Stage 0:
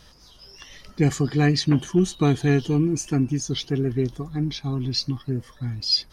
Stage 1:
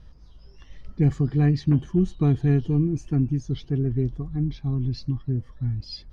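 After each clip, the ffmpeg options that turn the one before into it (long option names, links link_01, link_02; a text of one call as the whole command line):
ffmpeg -i in.wav -af "aemphasis=mode=reproduction:type=riaa,volume=-9dB" out.wav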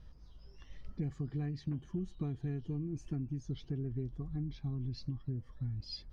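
ffmpeg -i in.wav -af "acompressor=threshold=-28dB:ratio=6,volume=-6.5dB" out.wav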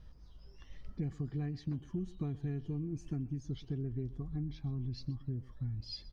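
ffmpeg -i in.wav -af "aecho=1:1:126:0.1" out.wav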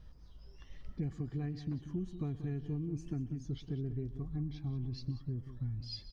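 ffmpeg -i in.wav -filter_complex "[0:a]asplit=2[link_01][link_02];[link_02]adelay=186.6,volume=-12dB,highshelf=frequency=4000:gain=-4.2[link_03];[link_01][link_03]amix=inputs=2:normalize=0" out.wav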